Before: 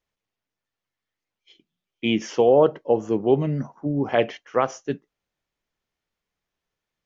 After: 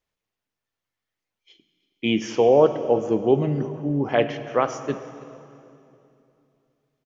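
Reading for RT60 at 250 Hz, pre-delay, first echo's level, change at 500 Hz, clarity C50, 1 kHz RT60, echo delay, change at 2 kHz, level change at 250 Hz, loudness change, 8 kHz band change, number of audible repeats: 3.2 s, 23 ms, -21.5 dB, +0.5 dB, 11.0 dB, 2.6 s, 0.323 s, +0.5 dB, +0.5 dB, +0.5 dB, n/a, 1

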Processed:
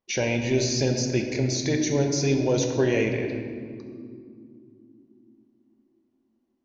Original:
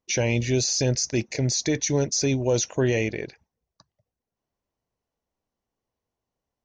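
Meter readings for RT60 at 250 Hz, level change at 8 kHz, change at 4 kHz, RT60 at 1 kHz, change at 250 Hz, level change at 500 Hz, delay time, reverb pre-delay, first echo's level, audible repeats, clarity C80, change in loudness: 4.6 s, -5.0 dB, -2.0 dB, 2.1 s, +2.0 dB, +1.0 dB, none, 4 ms, none, none, 6.0 dB, -0.5 dB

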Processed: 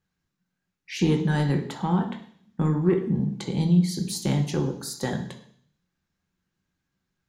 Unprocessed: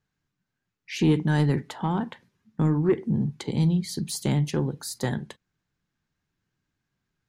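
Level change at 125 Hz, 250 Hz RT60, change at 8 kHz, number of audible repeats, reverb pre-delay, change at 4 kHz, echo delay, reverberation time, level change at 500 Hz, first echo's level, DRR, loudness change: +0.5 dB, 0.60 s, +0.5 dB, none, 3 ms, +1.0 dB, none, 0.55 s, +0.5 dB, none, 4.0 dB, +0.5 dB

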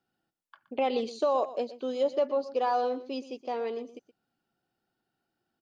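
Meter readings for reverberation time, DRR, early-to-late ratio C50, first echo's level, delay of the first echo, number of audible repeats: none, none, none, -15.0 dB, 0.121 s, 1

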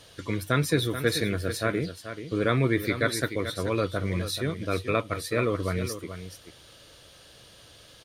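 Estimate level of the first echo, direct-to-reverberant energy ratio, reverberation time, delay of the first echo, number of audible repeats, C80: -10.5 dB, none, none, 0.433 s, 1, none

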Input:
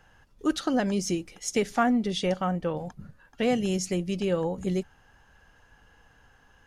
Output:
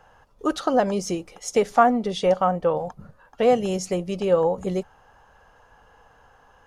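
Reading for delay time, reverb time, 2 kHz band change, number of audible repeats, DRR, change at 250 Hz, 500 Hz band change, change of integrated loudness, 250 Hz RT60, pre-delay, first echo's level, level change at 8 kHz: none, none, +1.5 dB, none, none, +0.5 dB, +8.0 dB, +5.0 dB, none, none, none, 0.0 dB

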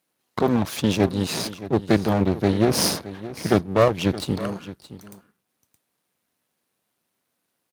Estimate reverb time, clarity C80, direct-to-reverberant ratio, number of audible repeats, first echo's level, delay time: none, none, none, 1, -15.5 dB, 0.62 s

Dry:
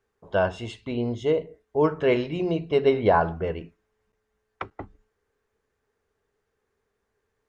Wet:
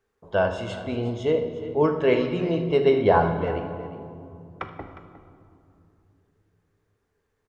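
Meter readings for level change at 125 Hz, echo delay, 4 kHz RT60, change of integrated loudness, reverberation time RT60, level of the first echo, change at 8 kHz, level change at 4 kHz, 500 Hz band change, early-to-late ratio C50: +2.5 dB, 78 ms, 1.4 s, +1.0 dB, 2.6 s, -17.5 dB, n/a, +1.0 dB, +1.5 dB, 7.5 dB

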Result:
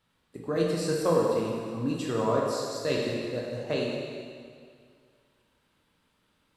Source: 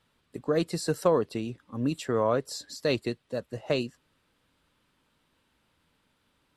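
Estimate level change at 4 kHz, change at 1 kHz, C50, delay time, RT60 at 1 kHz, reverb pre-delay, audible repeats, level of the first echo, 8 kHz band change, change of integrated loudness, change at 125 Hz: +0.5 dB, +1.0 dB, -0.5 dB, none, 2.1 s, 7 ms, none, none, +0.5 dB, +0.5 dB, +0.5 dB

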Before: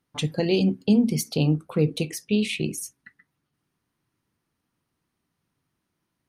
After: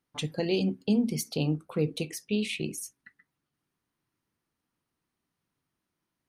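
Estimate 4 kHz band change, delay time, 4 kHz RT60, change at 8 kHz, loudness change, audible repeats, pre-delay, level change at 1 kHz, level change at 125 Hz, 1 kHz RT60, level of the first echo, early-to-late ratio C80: -4.5 dB, none, none, -4.5 dB, -6.0 dB, none, none, -4.5 dB, -7.5 dB, none, none, none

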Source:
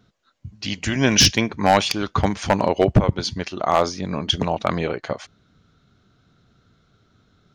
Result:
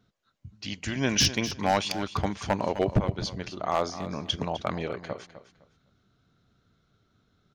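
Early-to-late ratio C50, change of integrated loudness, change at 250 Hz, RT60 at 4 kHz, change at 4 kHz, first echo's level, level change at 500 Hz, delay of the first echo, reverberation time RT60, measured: none, -8.5 dB, -8.0 dB, none, -8.5 dB, -13.0 dB, -8.5 dB, 0.255 s, none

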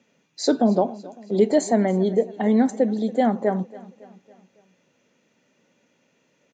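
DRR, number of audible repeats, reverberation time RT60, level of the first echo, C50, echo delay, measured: none, 3, none, -20.0 dB, none, 0.278 s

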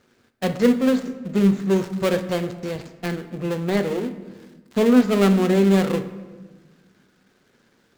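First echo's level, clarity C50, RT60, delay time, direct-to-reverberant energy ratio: none, 12.0 dB, 1.3 s, none, 8.5 dB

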